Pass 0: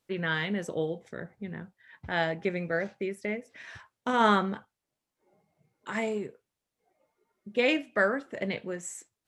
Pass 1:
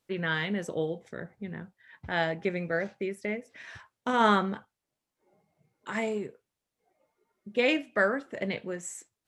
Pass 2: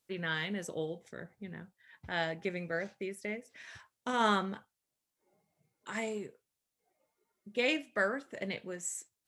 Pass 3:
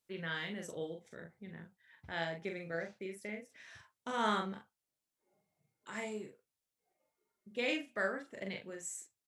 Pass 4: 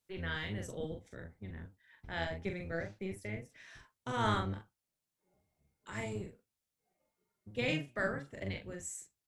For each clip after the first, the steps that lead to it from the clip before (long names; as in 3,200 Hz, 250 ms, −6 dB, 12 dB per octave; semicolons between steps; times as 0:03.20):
no processing that can be heard
high-shelf EQ 4,000 Hz +10 dB; level −6.5 dB
double-tracking delay 42 ms −5 dB; level −5.5 dB
sub-octave generator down 1 octave, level +3 dB